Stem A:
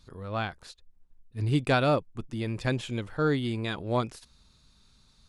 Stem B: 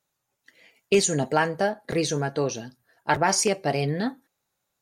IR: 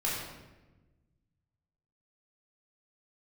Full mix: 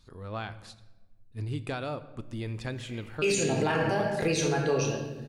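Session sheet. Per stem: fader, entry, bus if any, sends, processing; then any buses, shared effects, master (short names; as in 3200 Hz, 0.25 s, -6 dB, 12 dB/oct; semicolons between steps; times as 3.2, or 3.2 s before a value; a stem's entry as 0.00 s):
-3.0 dB, 0.00 s, send -18 dB, compressor 6:1, threshold -29 dBFS, peak gain reduction 9.5 dB
-6.5 dB, 2.30 s, send -3 dB, bell 2600 Hz +8 dB 0.24 oct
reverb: on, RT60 1.1 s, pre-delay 12 ms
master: limiter -17.5 dBFS, peak gain reduction 10 dB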